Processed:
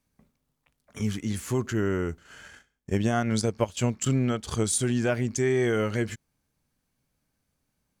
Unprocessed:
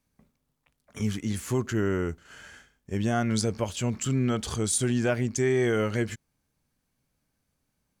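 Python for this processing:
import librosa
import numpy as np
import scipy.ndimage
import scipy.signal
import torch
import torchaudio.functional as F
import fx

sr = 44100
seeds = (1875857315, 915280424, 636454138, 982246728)

y = fx.transient(x, sr, attack_db=6, sustain_db=-10, at=(2.44, 4.64))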